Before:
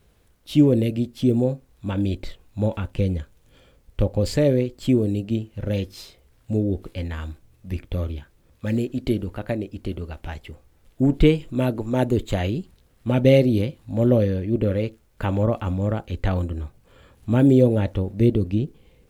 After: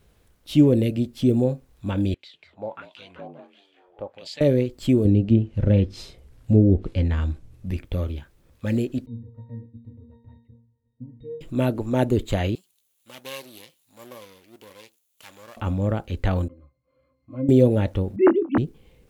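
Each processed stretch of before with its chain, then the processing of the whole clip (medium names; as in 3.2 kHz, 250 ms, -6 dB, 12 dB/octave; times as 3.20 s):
2.14–4.41 s: frequency-shifting echo 194 ms, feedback 47%, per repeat +66 Hz, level -4 dB + LFO band-pass sine 1.5 Hz 720–3800 Hz
5.05–7.71 s: low-pass that closes with the level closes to 2.1 kHz, closed at -18 dBFS + bass shelf 400 Hz +8.5 dB
9.06–11.41 s: compression 3:1, threshold -26 dBFS + tilt shelf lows +6 dB, about 750 Hz + pitch-class resonator A#, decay 0.42 s
12.55–15.57 s: comb filter that takes the minimum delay 0.3 ms + differentiator
16.48–17.49 s: high-pass 490 Hz 6 dB/octave + pitch-class resonator C, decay 0.13 s
18.16–18.58 s: formants replaced by sine waves + distance through air 150 m + doubling 24 ms -8 dB
whole clip: none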